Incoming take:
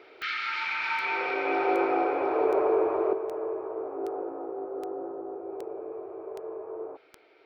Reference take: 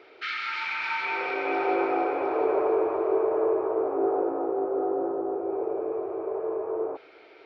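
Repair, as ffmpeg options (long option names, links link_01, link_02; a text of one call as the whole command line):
ffmpeg -i in.wav -af "adeclick=threshold=4,asetnsamples=nb_out_samples=441:pad=0,asendcmd='3.13 volume volume 8dB',volume=0dB" out.wav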